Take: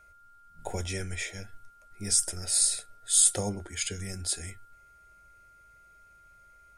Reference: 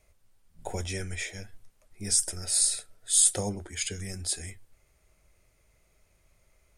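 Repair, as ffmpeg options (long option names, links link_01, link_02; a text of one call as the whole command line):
ffmpeg -i in.wav -af "bandreject=frequency=1400:width=30" out.wav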